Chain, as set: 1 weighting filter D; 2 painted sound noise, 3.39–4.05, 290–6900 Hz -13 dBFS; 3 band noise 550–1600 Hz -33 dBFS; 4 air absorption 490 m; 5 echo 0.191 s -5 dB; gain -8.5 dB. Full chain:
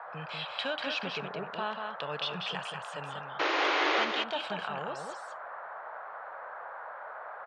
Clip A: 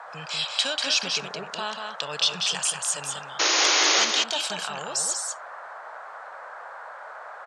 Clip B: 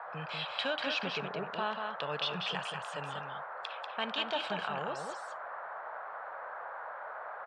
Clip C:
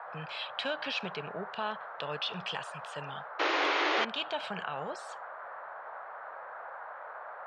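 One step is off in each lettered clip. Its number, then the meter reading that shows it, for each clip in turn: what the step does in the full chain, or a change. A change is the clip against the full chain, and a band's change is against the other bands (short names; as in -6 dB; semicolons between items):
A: 4, 8 kHz band +27.0 dB; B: 2, momentary loudness spread change -6 LU; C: 5, loudness change -1.0 LU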